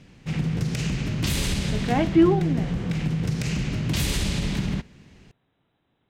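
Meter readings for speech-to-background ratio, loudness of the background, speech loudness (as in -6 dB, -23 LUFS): 3.5 dB, -26.5 LUFS, -23.0 LUFS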